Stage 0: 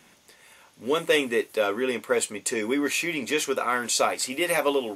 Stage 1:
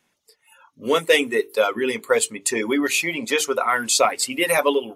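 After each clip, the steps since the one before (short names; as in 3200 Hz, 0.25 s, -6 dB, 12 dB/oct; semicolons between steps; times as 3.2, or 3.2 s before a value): spectral noise reduction 18 dB; notches 50/100/150/200/250/300/350/400/450 Hz; reverb removal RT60 1.5 s; gain +6 dB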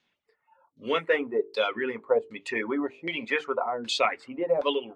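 LFO low-pass saw down 1.3 Hz 440–4400 Hz; gain -8 dB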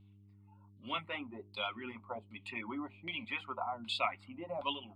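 vibrato 3.6 Hz 49 cents; buzz 100 Hz, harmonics 4, -53 dBFS -5 dB/oct; fixed phaser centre 1700 Hz, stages 6; gain -6 dB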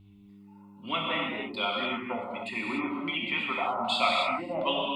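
non-linear reverb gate 0.32 s flat, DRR -2.5 dB; gain +6 dB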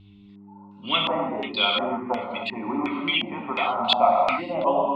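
LFO low-pass square 1.4 Hz 820–3900 Hz; gain +4.5 dB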